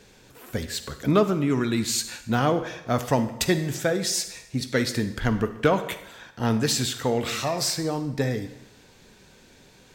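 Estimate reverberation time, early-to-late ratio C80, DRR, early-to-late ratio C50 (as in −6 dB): 0.90 s, 14.0 dB, 10.5 dB, 11.0 dB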